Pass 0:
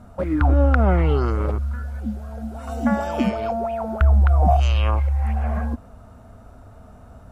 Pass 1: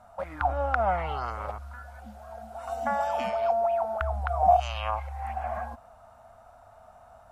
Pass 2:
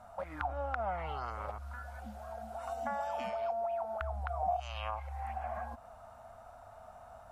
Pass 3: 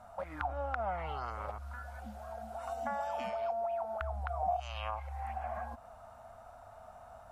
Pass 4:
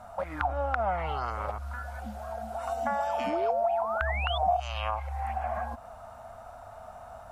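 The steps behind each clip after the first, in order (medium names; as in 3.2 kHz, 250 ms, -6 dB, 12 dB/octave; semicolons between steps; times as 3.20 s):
resonant low shelf 510 Hz -12 dB, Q 3; trim -5.5 dB
compression 2:1, threshold -41 dBFS, peak gain reduction 14 dB
no audible change
painted sound rise, 3.26–4.38 s, 270–3600 Hz -42 dBFS; trim +7 dB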